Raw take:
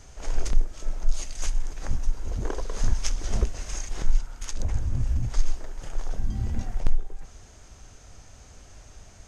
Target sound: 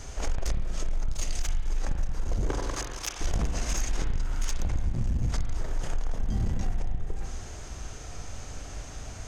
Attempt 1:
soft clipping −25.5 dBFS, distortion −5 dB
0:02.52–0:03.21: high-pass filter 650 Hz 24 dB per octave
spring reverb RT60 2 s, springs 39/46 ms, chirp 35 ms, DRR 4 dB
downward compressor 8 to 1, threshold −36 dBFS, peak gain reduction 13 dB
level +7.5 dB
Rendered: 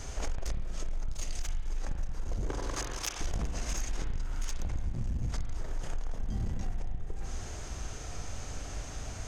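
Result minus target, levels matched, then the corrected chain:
downward compressor: peak gain reduction +5.5 dB
soft clipping −25.5 dBFS, distortion −5 dB
0:02.52–0:03.21: high-pass filter 650 Hz 24 dB per octave
spring reverb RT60 2 s, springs 39/46 ms, chirp 35 ms, DRR 4 dB
downward compressor 8 to 1, threshold −29.5 dBFS, peak gain reduction 7 dB
level +7.5 dB

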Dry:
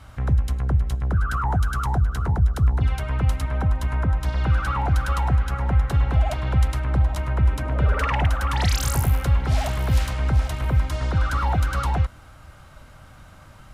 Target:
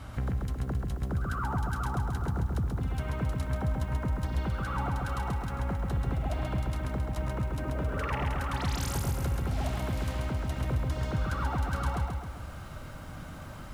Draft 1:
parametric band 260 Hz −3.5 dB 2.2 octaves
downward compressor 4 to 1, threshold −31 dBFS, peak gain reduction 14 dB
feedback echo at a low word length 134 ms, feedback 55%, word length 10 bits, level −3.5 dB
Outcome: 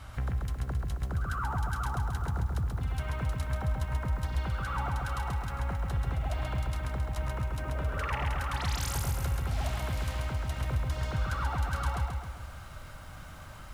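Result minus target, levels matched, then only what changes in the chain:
250 Hz band −5.5 dB
change: parametric band 260 Hz +6.5 dB 2.2 octaves

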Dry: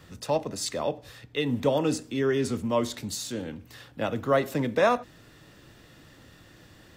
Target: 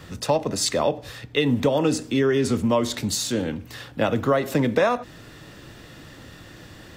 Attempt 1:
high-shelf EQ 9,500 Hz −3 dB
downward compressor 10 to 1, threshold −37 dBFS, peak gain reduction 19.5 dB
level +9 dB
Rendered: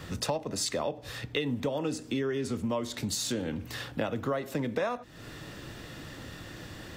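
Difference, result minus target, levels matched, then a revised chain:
downward compressor: peak gain reduction +11 dB
high-shelf EQ 9,500 Hz −3 dB
downward compressor 10 to 1, threshold −25 dBFS, peak gain reduction 8.5 dB
level +9 dB

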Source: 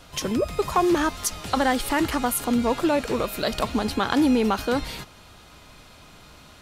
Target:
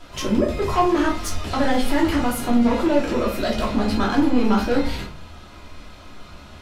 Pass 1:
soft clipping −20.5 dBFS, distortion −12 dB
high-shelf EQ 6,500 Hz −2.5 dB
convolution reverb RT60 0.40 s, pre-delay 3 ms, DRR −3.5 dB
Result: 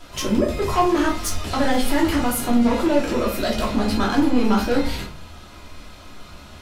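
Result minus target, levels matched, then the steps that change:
8,000 Hz band +4.5 dB
change: high-shelf EQ 6,500 Hz −10 dB

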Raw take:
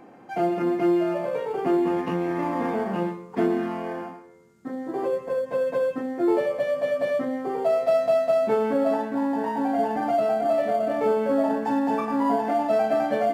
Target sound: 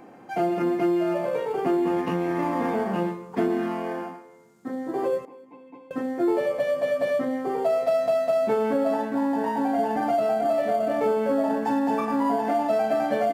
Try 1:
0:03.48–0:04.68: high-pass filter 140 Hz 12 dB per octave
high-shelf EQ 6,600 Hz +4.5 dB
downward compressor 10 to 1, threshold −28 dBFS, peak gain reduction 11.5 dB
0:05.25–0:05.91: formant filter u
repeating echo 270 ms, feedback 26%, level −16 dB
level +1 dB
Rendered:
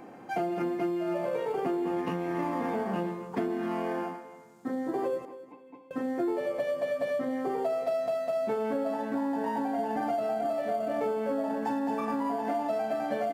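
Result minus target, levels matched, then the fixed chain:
downward compressor: peak gain reduction +7.5 dB; echo-to-direct +9.5 dB
0:03.48–0:04.68: high-pass filter 140 Hz 12 dB per octave
high-shelf EQ 6,600 Hz +4.5 dB
downward compressor 10 to 1, threshold −19.5 dBFS, peak gain reduction 3.5 dB
0:05.25–0:05.91: formant filter u
repeating echo 270 ms, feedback 26%, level −25.5 dB
level +1 dB

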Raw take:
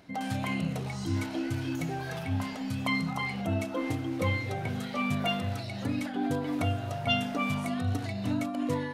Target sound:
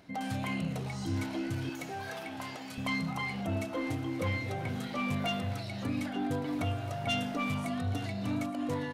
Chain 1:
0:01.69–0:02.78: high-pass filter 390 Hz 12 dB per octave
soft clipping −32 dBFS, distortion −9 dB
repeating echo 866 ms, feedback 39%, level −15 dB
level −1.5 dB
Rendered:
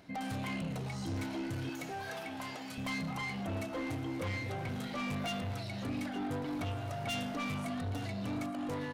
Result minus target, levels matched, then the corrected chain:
soft clipping: distortion +8 dB
0:01.69–0:02.78: high-pass filter 390 Hz 12 dB per octave
soft clipping −23.5 dBFS, distortion −17 dB
repeating echo 866 ms, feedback 39%, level −15 dB
level −1.5 dB

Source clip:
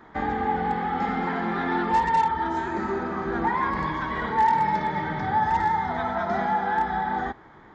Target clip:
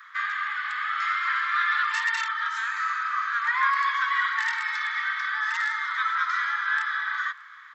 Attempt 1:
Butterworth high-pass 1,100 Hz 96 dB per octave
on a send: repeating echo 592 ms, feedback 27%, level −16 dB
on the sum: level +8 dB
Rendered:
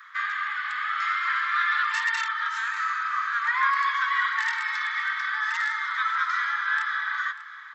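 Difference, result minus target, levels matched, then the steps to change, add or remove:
echo-to-direct +9.5 dB
change: repeating echo 592 ms, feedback 27%, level −25.5 dB

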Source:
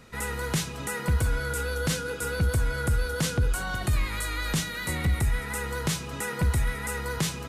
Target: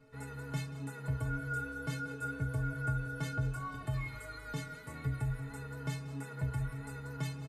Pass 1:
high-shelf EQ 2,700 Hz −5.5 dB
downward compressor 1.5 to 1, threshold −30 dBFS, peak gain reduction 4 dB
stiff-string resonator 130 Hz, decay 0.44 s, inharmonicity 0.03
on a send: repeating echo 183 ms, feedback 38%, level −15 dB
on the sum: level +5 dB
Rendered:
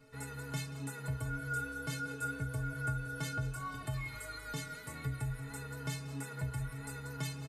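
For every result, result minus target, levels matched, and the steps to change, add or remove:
4,000 Hz band +5.0 dB; downward compressor: peak gain reduction +4 dB
change: high-shelf EQ 2,700 Hz −14.5 dB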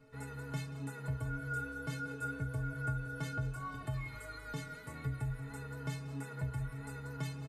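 downward compressor: peak gain reduction +4 dB
remove: downward compressor 1.5 to 1, threshold −30 dBFS, peak gain reduction 4 dB

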